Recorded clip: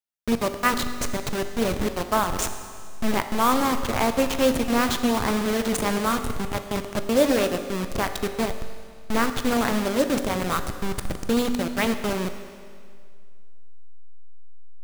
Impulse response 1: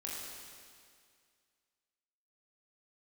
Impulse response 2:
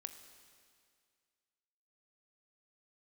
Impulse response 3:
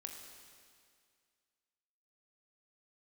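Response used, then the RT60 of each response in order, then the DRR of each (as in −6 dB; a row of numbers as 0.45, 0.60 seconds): 2; 2.1, 2.1, 2.1 seconds; −5.5, 8.0, 2.0 decibels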